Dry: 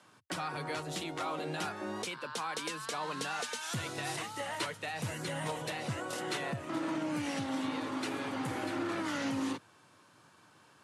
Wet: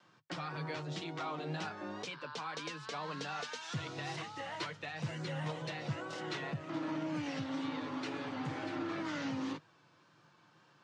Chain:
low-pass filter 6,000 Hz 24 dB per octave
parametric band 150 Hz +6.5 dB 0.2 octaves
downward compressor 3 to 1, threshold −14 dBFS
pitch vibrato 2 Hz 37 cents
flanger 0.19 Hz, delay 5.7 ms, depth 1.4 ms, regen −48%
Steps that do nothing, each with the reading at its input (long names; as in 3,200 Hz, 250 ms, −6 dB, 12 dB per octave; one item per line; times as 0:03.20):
downward compressor, threshold −14 dBFS: peak of its input −23.0 dBFS